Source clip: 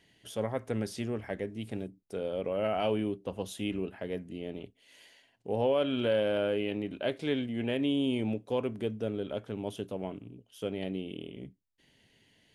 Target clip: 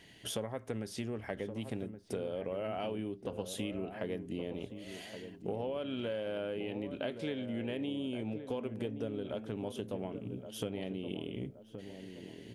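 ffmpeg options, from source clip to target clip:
-filter_complex "[0:a]acompressor=threshold=-42dB:ratio=10,asplit=2[a][b];[b]adelay=1122,lowpass=f=940:p=1,volume=-8.5dB,asplit=2[c][d];[d]adelay=1122,lowpass=f=940:p=1,volume=0.47,asplit=2[e][f];[f]adelay=1122,lowpass=f=940:p=1,volume=0.47,asplit=2[g][h];[h]adelay=1122,lowpass=f=940:p=1,volume=0.47,asplit=2[i][j];[j]adelay=1122,lowpass=f=940:p=1,volume=0.47[k];[a][c][e][g][i][k]amix=inputs=6:normalize=0,volume=7.5dB"

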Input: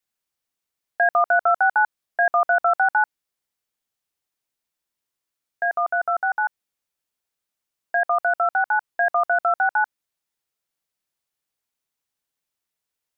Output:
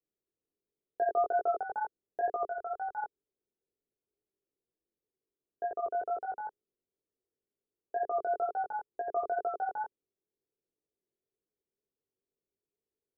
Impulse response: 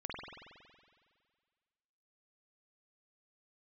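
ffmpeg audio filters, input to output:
-filter_complex "[0:a]lowpass=f=410:t=q:w=4.9,asettb=1/sr,asplit=3[a][b][c];[a]atrim=end=2.494[d];[b]atrim=start=2.49:end=2.98,asetpts=PTS-STARTPTS,afade=t=in:d=0.004:c=qsin,afade=t=out:st=0.486:d=0.004:c=qsin,equalizer=f=300:t=o:w=2.4:g=-13[e];[c]atrim=start=2.976[f];[d][e]acrossfade=d=0.004:c1=hsin:c2=qsin[g];[g][f]acrossfade=d=0.004:c1=qsin:c2=hsin,flanger=delay=18:depth=3.5:speed=2.1"

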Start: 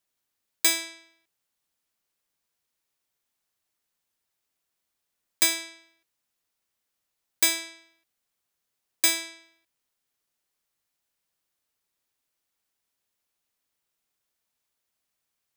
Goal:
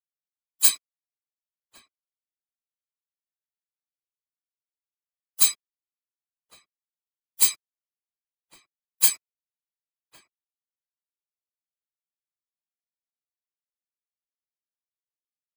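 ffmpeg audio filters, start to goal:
-filter_complex "[0:a]afftfilt=real='re*gte(hypot(re,im),0.126)':imag='im*gte(hypot(re,im),0.126)':win_size=1024:overlap=0.75,highshelf=f=8.3k:g=10.5,acrossover=split=310|690|5800[a][b][c][d];[a]acompressor=threshold=-53dB:ratio=20[e];[c]alimiter=limit=-22dB:level=0:latency=1:release=376[f];[d]acontrast=70[g];[e][b][f][g]amix=inputs=4:normalize=0,aeval=exprs='sgn(val(0))*max(abs(val(0))-0.0106,0)':c=same,asplit=4[h][i][j][k];[i]asetrate=22050,aresample=44100,atempo=2,volume=-6dB[l];[j]asetrate=55563,aresample=44100,atempo=0.793701,volume=-14dB[m];[k]asetrate=66075,aresample=44100,atempo=0.66742,volume=-16dB[n];[h][l][m][n]amix=inputs=4:normalize=0,afftfilt=real='hypot(re,im)*cos(2*PI*random(0))':imag='hypot(re,im)*sin(2*PI*random(1))':win_size=512:overlap=0.75,asplit=2[o][p];[p]adelay=1108,volume=-17dB,highshelf=f=4k:g=-24.9[q];[o][q]amix=inputs=2:normalize=0"

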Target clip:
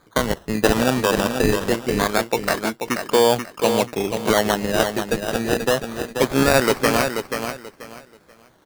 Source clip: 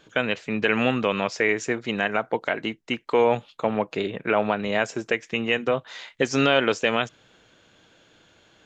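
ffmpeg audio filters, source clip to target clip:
-filter_complex "[0:a]asplit=2[a][b];[b]aeval=exprs='sgn(val(0))*max(abs(val(0))-0.0126,0)':c=same,volume=-5dB[c];[a][c]amix=inputs=2:normalize=0,acrusher=samples=16:mix=1:aa=0.000001:lfo=1:lforange=9.6:lforate=0.24,aecho=1:1:484|968|1452:0.447|0.107|0.0257"

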